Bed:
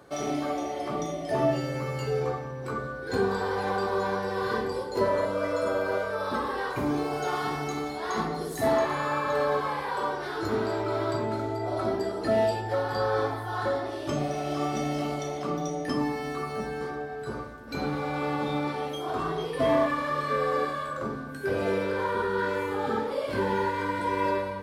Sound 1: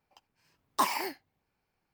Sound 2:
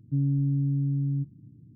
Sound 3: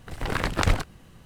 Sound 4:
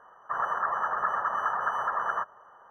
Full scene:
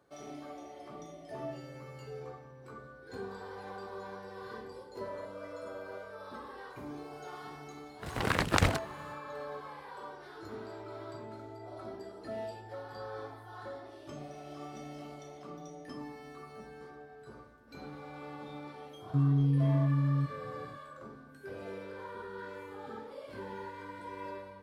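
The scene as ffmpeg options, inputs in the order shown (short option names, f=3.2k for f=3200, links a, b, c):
-filter_complex "[0:a]volume=-16dB[a];[3:a]highpass=76,atrim=end=1.25,asetpts=PTS-STARTPTS,volume=-2dB,afade=t=in:d=0.1,afade=t=out:st=1.15:d=0.1,adelay=7950[b];[2:a]atrim=end=1.75,asetpts=PTS-STARTPTS,volume=-1.5dB,afade=t=in:d=0.004:c=hsin,afade=t=out:st=1.746:d=0.004:c=hsin,adelay=19020[c];[a][b][c]amix=inputs=3:normalize=0"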